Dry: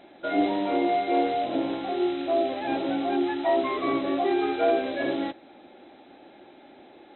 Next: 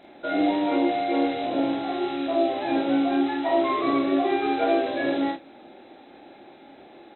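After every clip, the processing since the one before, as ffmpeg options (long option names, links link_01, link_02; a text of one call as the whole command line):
ffmpeg -i in.wav -filter_complex "[0:a]bandreject=frequency=3100:width=27,asplit=2[link_01][link_02];[link_02]aecho=0:1:29|47|77:0.562|0.668|0.237[link_03];[link_01][link_03]amix=inputs=2:normalize=0" out.wav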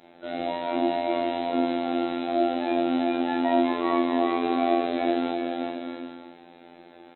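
ffmpeg -i in.wav -af "aecho=1:1:390|643.5|808.3|915.4|985:0.631|0.398|0.251|0.158|0.1,afftfilt=real='hypot(re,im)*cos(PI*b)':imag='0':win_size=2048:overlap=0.75" out.wav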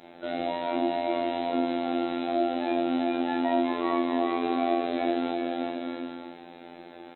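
ffmpeg -i in.wav -af "acompressor=threshold=-36dB:ratio=1.5,volume=3.5dB" out.wav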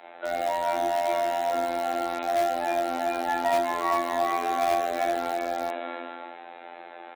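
ffmpeg -i in.wav -filter_complex "[0:a]acrossover=split=540 2700:gain=0.0708 1 0.126[link_01][link_02][link_03];[link_01][link_02][link_03]amix=inputs=3:normalize=0,asplit=2[link_04][link_05];[link_05]aeval=exprs='(mod(20*val(0)+1,2)-1)/20':channel_layout=same,volume=-10.5dB[link_06];[link_04][link_06]amix=inputs=2:normalize=0,volume=5.5dB" out.wav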